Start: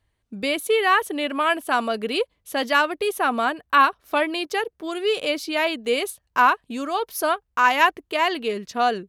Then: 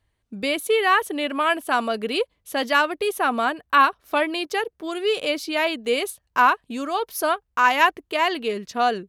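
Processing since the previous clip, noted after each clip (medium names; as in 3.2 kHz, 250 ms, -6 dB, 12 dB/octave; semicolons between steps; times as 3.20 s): no audible change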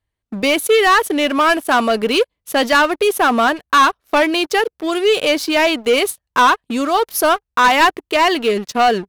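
waveshaping leveller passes 3; trim -1.5 dB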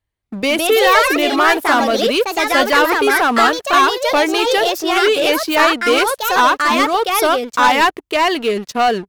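ever faster or slower copies 229 ms, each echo +3 st, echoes 2; trim -1 dB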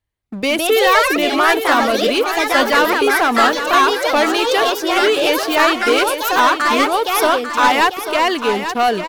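feedback delay 844 ms, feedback 31%, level -9.5 dB; trim -1 dB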